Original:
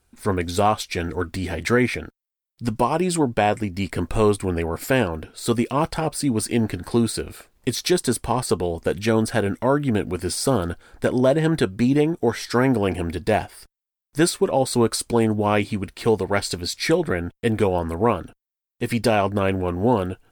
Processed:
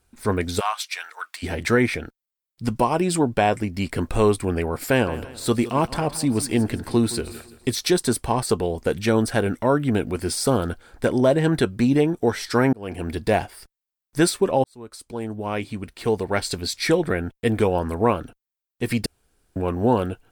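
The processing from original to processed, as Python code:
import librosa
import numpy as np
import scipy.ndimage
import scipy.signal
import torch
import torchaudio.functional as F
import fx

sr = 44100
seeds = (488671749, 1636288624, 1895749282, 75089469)

y = fx.highpass(x, sr, hz=960.0, slope=24, at=(0.59, 1.42), fade=0.02)
y = fx.echo_feedback(y, sr, ms=169, feedback_pct=41, wet_db=-16, at=(5.06, 7.81), fade=0.02)
y = fx.edit(y, sr, fx.fade_in_span(start_s=12.73, length_s=0.43),
    fx.fade_in_span(start_s=14.64, length_s=2.03),
    fx.room_tone_fill(start_s=19.06, length_s=0.5), tone=tone)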